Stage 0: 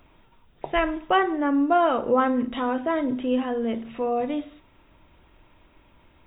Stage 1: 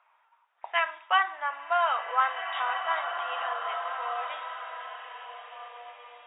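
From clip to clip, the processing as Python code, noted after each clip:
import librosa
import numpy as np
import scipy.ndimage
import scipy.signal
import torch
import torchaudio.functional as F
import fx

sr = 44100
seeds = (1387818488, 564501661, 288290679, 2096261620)

y = fx.env_lowpass(x, sr, base_hz=1400.0, full_db=-18.0)
y = scipy.signal.sosfilt(scipy.signal.cheby2(4, 60, 260.0, 'highpass', fs=sr, output='sos'), y)
y = fx.rev_bloom(y, sr, seeds[0], attack_ms=1870, drr_db=5.0)
y = y * 10.0 ** (1.0 / 20.0)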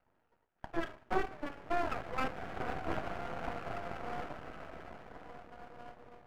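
y = scipy.ndimage.median_filter(x, 41, mode='constant')
y = scipy.signal.savgol_filter(y, 41, 4, mode='constant')
y = np.maximum(y, 0.0)
y = y * 10.0 ** (5.5 / 20.0)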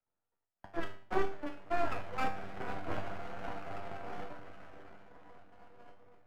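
y = fx.comb_fb(x, sr, f0_hz=98.0, decay_s=0.45, harmonics='all', damping=0.0, mix_pct=80)
y = fx.band_widen(y, sr, depth_pct=40)
y = y * 10.0 ** (7.0 / 20.0)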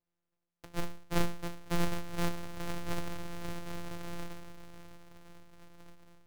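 y = np.r_[np.sort(x[:len(x) // 256 * 256].reshape(-1, 256), axis=1).ravel(), x[len(x) // 256 * 256:]]
y = y * 10.0 ** (1.0 / 20.0)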